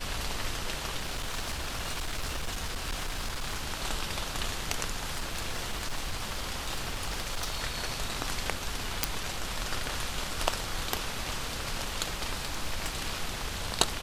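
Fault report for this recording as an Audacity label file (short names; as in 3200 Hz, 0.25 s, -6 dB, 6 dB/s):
0.960000	3.610000	clipped -29 dBFS
5.130000	7.650000	clipped -27.5 dBFS
9.040000	9.040000	pop
12.020000	12.890000	clipped -24.5 dBFS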